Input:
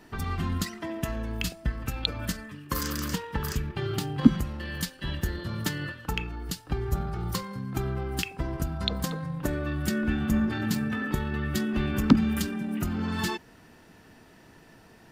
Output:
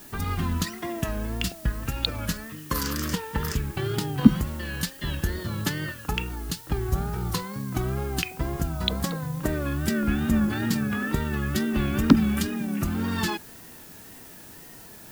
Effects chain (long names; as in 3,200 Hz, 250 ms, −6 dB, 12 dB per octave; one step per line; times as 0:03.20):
reversed playback
upward compression, threshold −47 dBFS
reversed playback
tape wow and flutter 88 cents
background noise blue −50 dBFS
level +2.5 dB